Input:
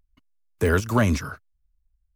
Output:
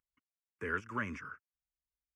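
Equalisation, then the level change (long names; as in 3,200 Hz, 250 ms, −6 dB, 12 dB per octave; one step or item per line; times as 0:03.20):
high-pass filter 1,300 Hz 6 dB per octave
head-to-tape spacing loss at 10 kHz 29 dB
phaser with its sweep stopped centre 1,700 Hz, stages 4
−2.0 dB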